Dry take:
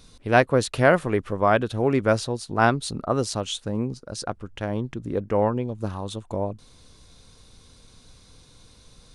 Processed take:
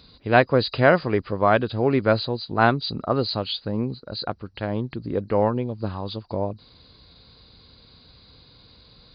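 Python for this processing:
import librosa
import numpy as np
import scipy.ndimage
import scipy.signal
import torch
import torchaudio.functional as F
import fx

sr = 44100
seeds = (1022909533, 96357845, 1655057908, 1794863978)

y = fx.freq_compress(x, sr, knee_hz=3800.0, ratio=4.0)
y = scipy.signal.sosfilt(scipy.signal.butter(2, 48.0, 'highpass', fs=sr, output='sos'), y)
y = y * 10.0 ** (1.0 / 20.0)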